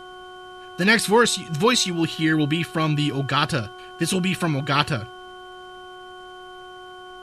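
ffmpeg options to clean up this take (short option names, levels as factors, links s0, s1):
-af "bandreject=f=366.7:t=h:w=4,bandreject=f=733.4:t=h:w=4,bandreject=f=1100.1:t=h:w=4,bandreject=f=1466.8:t=h:w=4,bandreject=f=3100:w=30,agate=range=0.0891:threshold=0.0224"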